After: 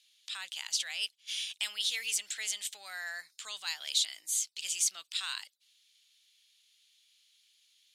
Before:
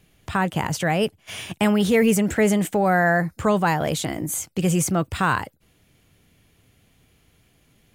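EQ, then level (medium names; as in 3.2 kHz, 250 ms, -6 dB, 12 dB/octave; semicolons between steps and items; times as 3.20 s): ladder band-pass 4.4 kHz, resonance 50%; treble shelf 5.1 kHz +7 dB; +7.5 dB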